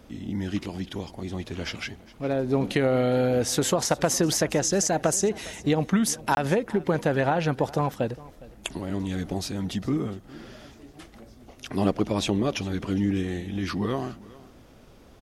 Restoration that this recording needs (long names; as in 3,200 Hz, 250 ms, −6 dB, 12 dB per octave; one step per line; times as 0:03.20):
repair the gap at 0:06.35, 21 ms
echo removal 410 ms −20.5 dB